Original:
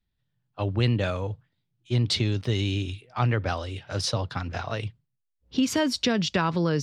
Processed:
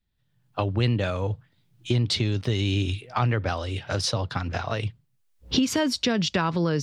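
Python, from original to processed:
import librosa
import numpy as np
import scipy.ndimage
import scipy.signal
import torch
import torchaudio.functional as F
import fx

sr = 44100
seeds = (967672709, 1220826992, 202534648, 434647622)

y = fx.recorder_agc(x, sr, target_db=-16.0, rise_db_per_s=22.0, max_gain_db=30)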